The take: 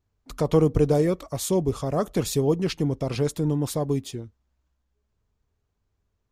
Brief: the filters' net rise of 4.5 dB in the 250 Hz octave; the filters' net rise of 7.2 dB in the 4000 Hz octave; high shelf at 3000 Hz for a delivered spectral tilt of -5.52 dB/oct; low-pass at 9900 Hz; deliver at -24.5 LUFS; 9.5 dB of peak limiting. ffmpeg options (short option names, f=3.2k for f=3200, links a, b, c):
-af "lowpass=9.9k,equalizer=f=250:t=o:g=6.5,highshelf=f=3k:g=3.5,equalizer=f=4k:t=o:g=6,volume=0.5dB,alimiter=limit=-14.5dB:level=0:latency=1"